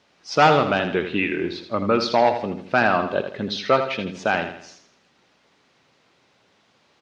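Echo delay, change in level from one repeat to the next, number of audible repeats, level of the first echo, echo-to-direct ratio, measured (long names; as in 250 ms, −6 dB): 81 ms, −7.5 dB, 4, −9.0 dB, −8.0 dB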